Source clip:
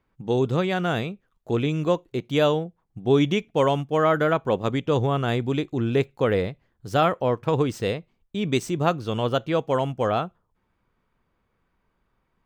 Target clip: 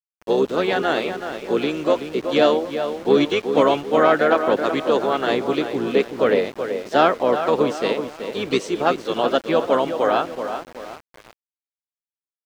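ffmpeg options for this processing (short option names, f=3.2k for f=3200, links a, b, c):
-filter_complex "[0:a]acontrast=89,highpass=f=280:w=0.5412,highpass=f=280:w=1.3066,asplit=2[a][b];[b]adelay=377,lowpass=f=2.8k:p=1,volume=-8dB,asplit=2[c][d];[d]adelay=377,lowpass=f=2.8k:p=1,volume=0.42,asplit=2[e][f];[f]adelay=377,lowpass=f=2.8k:p=1,volume=0.42,asplit=2[g][h];[h]adelay=377,lowpass=f=2.8k:p=1,volume=0.42,asplit=2[i][j];[j]adelay=377,lowpass=f=2.8k:p=1,volume=0.42[k];[a][c][e][g][i][k]amix=inputs=6:normalize=0,asplit=3[l][m][n];[m]asetrate=22050,aresample=44100,atempo=2,volume=-13dB[o];[n]asetrate=52444,aresample=44100,atempo=0.840896,volume=-9dB[p];[l][o][p]amix=inputs=3:normalize=0,aeval=exprs='val(0)*gte(abs(val(0)),0.0224)':c=same,acrossover=split=6900[q][r];[r]acompressor=threshold=-51dB:ratio=4:attack=1:release=60[s];[q][s]amix=inputs=2:normalize=0,volume=-2.5dB"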